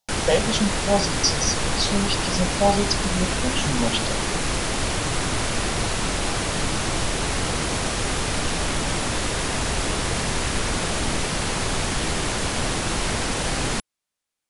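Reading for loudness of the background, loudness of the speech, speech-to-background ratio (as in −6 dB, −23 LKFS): −24.0 LKFS, −24.5 LKFS, −0.5 dB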